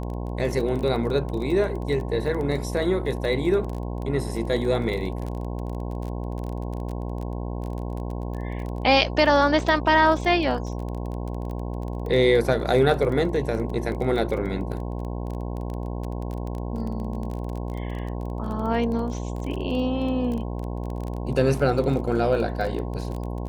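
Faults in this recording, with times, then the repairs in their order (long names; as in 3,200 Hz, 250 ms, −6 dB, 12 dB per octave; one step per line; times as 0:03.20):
mains buzz 60 Hz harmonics 18 −30 dBFS
surface crackle 22 per second −30 dBFS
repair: click removal
hum removal 60 Hz, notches 18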